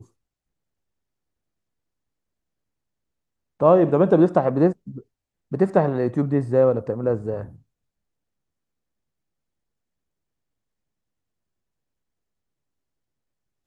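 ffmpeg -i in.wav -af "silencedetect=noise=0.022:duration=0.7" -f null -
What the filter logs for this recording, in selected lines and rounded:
silence_start: 0.00
silence_end: 3.60 | silence_duration: 3.60
silence_start: 7.49
silence_end: 13.66 | silence_duration: 6.17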